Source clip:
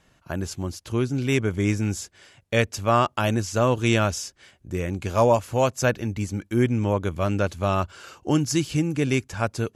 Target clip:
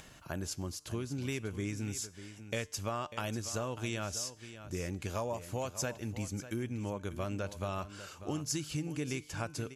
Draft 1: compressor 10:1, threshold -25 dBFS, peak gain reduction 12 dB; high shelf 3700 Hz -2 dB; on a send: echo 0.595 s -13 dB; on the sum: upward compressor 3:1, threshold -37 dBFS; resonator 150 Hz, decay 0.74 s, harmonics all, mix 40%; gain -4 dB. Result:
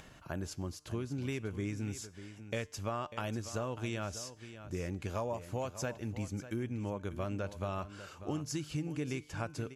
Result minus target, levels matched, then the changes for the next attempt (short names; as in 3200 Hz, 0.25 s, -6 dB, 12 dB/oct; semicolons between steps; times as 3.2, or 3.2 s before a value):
8000 Hz band -5.5 dB
change: high shelf 3700 Hz +6.5 dB